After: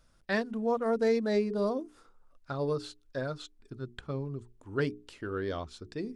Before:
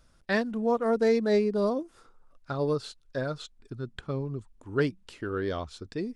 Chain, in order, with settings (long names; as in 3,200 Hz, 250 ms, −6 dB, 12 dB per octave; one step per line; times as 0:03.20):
mains-hum notches 60/120/180/240/300/360/420 Hz
level −3 dB